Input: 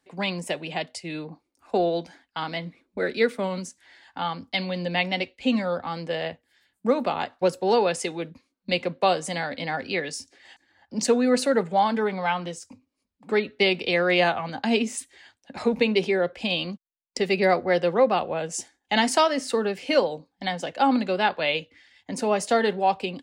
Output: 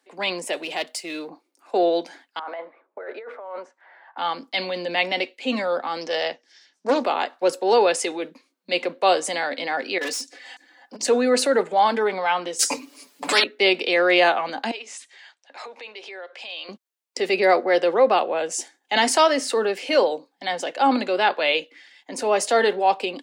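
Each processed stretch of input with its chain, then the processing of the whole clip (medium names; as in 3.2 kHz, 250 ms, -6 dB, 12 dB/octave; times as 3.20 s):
0.53–1.29 s: partial rectifier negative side -3 dB + treble shelf 5.9 kHz +10 dB
2.39–4.18 s: Butterworth band-pass 880 Hz, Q 1 + compressor with a negative ratio -38 dBFS
6.01–7.04 s: resonant low-pass 5.7 kHz, resonance Q 9.1 + loudspeaker Doppler distortion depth 0.31 ms
9.98–11.01 s: comb 4 ms, depth 68% + compressor with a negative ratio -29 dBFS, ratio -0.5 + overload inside the chain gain 29.5 dB
12.59–13.44 s: peaking EQ 7.9 kHz +5.5 dB 2.8 oct + comb 6.9 ms, depth 98% + spectrum-flattening compressor 4:1
14.71–16.69 s: compression 4:1, threshold -34 dBFS + band-pass 700–6700 Hz
whole clip: high-pass 290 Hz 24 dB/octave; transient shaper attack -4 dB, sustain +2 dB; trim +4.5 dB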